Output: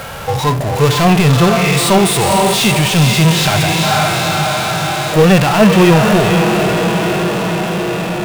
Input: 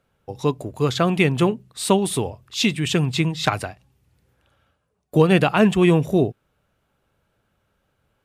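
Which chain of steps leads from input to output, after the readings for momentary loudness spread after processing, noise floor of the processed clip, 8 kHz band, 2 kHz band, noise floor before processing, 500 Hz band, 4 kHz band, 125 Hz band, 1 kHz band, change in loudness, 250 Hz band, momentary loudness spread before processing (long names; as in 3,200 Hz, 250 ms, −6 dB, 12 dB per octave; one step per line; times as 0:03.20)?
7 LU, −19 dBFS, +14.0 dB, +12.0 dB, −71 dBFS, +9.0 dB, +12.5 dB, +11.0 dB, +13.5 dB, +8.5 dB, +8.5 dB, 10 LU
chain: low shelf with overshoot 500 Hz −6.5 dB, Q 1.5
feedback delay with all-pass diffusion 477 ms, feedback 53%, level −10 dB
power curve on the samples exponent 0.35
harmonic and percussive parts rebalanced percussive −16 dB
level +4 dB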